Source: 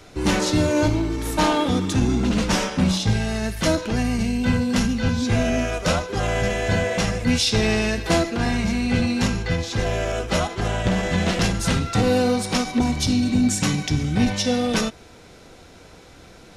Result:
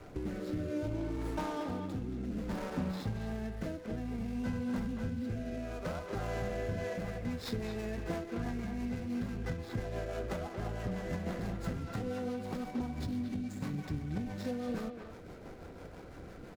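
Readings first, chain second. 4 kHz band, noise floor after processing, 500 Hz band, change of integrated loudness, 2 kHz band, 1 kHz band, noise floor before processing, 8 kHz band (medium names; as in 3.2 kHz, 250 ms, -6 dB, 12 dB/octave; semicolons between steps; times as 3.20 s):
-25.0 dB, -49 dBFS, -15.5 dB, -16.5 dB, -20.0 dB, -17.0 dB, -46 dBFS, -27.0 dB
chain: median filter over 15 samples; compression 8:1, threshold -33 dBFS, peak gain reduction 18 dB; rotary cabinet horn 0.6 Hz, later 6 Hz, at 6.38 s; speakerphone echo 230 ms, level -6 dB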